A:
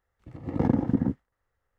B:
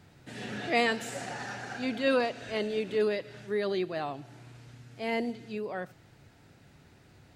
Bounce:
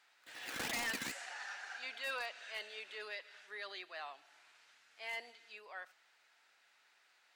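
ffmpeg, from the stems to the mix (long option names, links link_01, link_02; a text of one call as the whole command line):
ffmpeg -i stem1.wav -i stem2.wav -filter_complex "[0:a]acrusher=samples=16:mix=1:aa=0.000001:lfo=1:lforange=16:lforate=2.2,volume=0dB[link_01];[1:a]asplit=2[link_02][link_03];[link_03]highpass=frequency=720:poles=1,volume=11dB,asoftclip=type=tanh:threshold=-13dB[link_04];[link_02][link_04]amix=inputs=2:normalize=0,lowpass=frequency=5100:poles=1,volume=-6dB,volume=-10dB[link_05];[link_01][link_05]amix=inputs=2:normalize=0,highpass=1100,aeval=exprs='0.0251*(abs(mod(val(0)/0.0251+3,4)-2)-1)':channel_layout=same" out.wav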